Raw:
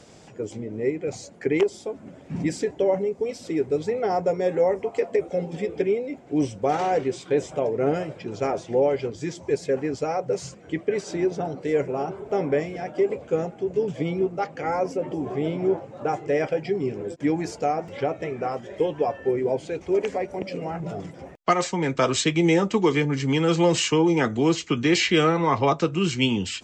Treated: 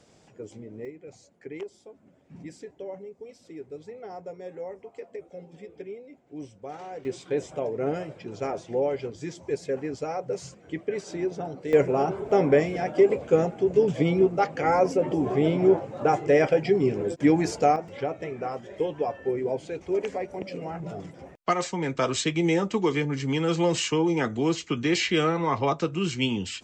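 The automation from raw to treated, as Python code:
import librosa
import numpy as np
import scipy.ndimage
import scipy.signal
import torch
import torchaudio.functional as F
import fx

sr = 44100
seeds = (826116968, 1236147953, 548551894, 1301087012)

y = fx.gain(x, sr, db=fx.steps((0.0, -9.0), (0.85, -16.0), (7.05, -5.0), (11.73, 3.5), (17.76, -4.0)))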